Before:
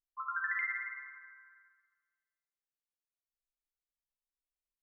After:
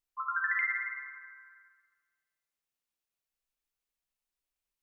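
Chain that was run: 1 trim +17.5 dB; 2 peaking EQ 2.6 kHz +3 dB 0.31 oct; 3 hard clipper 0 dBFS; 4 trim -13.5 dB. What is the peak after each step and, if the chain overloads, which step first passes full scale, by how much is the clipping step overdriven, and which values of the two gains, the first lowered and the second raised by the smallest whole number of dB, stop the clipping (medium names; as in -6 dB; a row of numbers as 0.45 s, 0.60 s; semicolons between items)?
-5.5 dBFS, -5.5 dBFS, -5.5 dBFS, -19.0 dBFS; nothing clips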